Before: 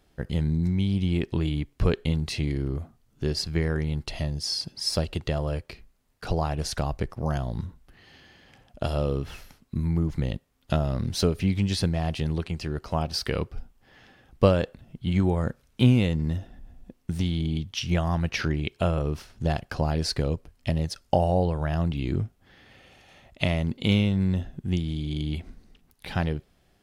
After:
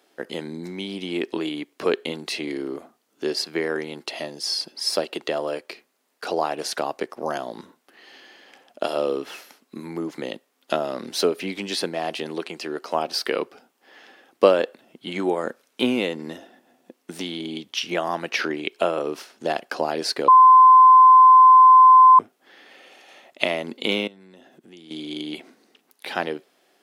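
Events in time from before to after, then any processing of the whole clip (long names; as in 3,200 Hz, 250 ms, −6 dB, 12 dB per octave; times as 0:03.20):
0:20.28–0:22.19: beep over 1,030 Hz −13 dBFS
0:24.07–0:24.91: downward compressor 5 to 1, threshold −39 dBFS
whole clip: dynamic equaliser 6,600 Hz, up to −4 dB, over −44 dBFS, Q 0.93; high-pass filter 300 Hz 24 dB per octave; level +6 dB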